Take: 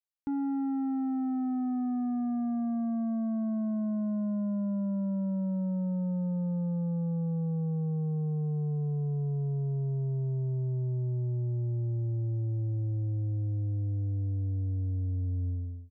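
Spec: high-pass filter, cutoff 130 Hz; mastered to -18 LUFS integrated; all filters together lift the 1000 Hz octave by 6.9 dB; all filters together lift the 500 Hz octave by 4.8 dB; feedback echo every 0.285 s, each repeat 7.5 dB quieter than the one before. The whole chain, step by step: HPF 130 Hz; bell 500 Hz +3.5 dB; bell 1000 Hz +8.5 dB; feedback echo 0.285 s, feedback 42%, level -7.5 dB; gain +13.5 dB

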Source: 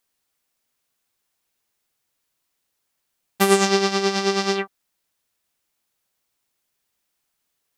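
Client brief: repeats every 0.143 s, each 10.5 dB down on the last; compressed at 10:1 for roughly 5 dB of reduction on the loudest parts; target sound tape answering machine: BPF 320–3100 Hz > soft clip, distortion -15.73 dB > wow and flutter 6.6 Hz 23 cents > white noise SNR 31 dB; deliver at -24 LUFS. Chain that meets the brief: compressor 10:1, threshold -17 dBFS; BPF 320–3100 Hz; feedback echo 0.143 s, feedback 30%, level -10.5 dB; soft clip -14 dBFS; wow and flutter 6.6 Hz 23 cents; white noise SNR 31 dB; gain +2.5 dB

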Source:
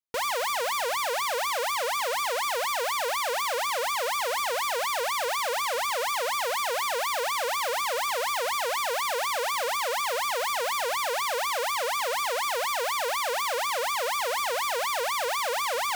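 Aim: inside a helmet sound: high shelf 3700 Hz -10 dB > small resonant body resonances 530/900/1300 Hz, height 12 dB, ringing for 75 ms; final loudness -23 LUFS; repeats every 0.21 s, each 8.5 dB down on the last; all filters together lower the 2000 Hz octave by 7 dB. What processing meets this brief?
bell 2000 Hz -6 dB; high shelf 3700 Hz -10 dB; feedback echo 0.21 s, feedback 38%, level -8.5 dB; small resonant body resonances 530/900/1300 Hz, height 12 dB, ringing for 75 ms; gain +3.5 dB

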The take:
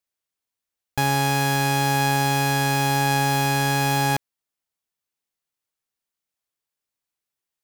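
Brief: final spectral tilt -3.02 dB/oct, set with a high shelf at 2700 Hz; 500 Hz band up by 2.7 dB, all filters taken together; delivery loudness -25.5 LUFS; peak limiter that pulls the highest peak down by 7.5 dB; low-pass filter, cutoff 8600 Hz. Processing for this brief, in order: LPF 8600 Hz; bell 500 Hz +3 dB; high shelf 2700 Hz +9 dB; gain -3 dB; limiter -15 dBFS

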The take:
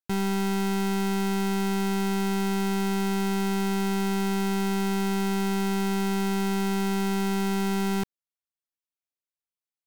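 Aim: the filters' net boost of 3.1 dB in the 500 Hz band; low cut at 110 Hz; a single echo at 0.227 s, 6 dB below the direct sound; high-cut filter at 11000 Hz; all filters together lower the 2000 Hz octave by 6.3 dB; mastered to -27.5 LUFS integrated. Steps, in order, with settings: HPF 110 Hz; LPF 11000 Hz; bell 500 Hz +5 dB; bell 2000 Hz -8.5 dB; echo 0.227 s -6 dB; gain -1 dB

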